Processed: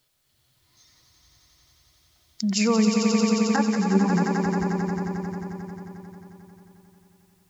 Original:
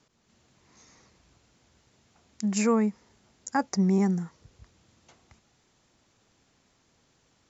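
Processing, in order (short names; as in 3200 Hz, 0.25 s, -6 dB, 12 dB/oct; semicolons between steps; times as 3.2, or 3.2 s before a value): per-bin expansion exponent 1.5; in parallel at -0.5 dB: negative-ratio compressor -31 dBFS; on the sum: low-pass sweep 5000 Hz -> 220 Hz, 3.25–4.93; requantised 12-bit, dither triangular; swelling echo 89 ms, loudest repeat 5, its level -7 dB; 3.56–4.1 ensemble effect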